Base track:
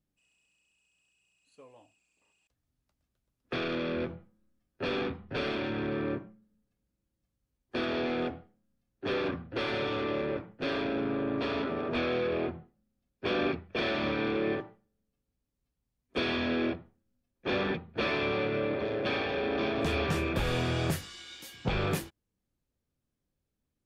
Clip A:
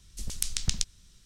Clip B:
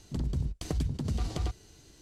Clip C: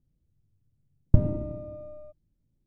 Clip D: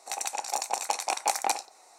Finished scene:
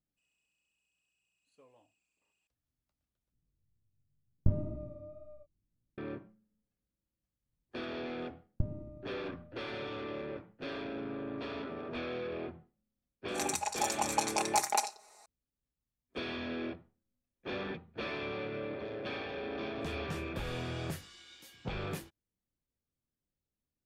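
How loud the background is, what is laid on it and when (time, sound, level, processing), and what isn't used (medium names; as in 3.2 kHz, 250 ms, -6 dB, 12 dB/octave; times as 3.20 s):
base track -8.5 dB
3.32 s: replace with C -6 dB + chorus 2 Hz, delay 16.5 ms, depth 5.2 ms
7.46 s: add C -14.5 dB
13.28 s: add D -5 dB + comb 4.8 ms, depth 77%
not used: A, B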